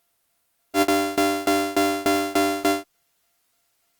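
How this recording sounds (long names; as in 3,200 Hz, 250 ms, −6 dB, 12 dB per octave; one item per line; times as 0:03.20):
a buzz of ramps at a fixed pitch in blocks of 64 samples
tremolo saw down 3.4 Hz, depth 95%
a quantiser's noise floor 12 bits, dither triangular
Opus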